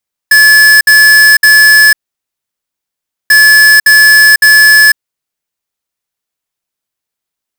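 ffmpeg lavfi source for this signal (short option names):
-f lavfi -i "aevalsrc='0.668*(2*lt(mod(1720*t,1),0.5)-1)*clip(min(mod(mod(t,2.99),0.56),0.5-mod(mod(t,2.99),0.56))/0.005,0,1)*lt(mod(t,2.99),1.68)':d=5.98:s=44100"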